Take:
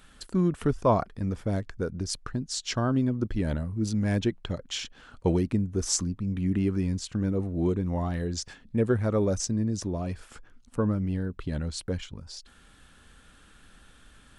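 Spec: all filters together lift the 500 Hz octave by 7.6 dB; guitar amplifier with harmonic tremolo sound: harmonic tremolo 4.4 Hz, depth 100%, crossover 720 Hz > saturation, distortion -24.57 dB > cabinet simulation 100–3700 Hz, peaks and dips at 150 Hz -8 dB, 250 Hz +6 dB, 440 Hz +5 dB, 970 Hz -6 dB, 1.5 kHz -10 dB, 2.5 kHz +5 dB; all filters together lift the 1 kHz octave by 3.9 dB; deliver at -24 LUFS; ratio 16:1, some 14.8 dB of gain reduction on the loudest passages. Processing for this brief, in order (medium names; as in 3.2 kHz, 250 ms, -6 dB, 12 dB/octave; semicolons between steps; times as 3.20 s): peaking EQ 500 Hz +4.5 dB; peaking EQ 1 kHz +8 dB; compression 16:1, threshold -25 dBFS; harmonic tremolo 4.4 Hz, depth 100%, crossover 720 Hz; saturation -20.5 dBFS; cabinet simulation 100–3700 Hz, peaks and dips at 150 Hz -8 dB, 250 Hz +6 dB, 440 Hz +5 dB, 970 Hz -6 dB, 1.5 kHz -10 dB, 2.5 kHz +5 dB; trim +12.5 dB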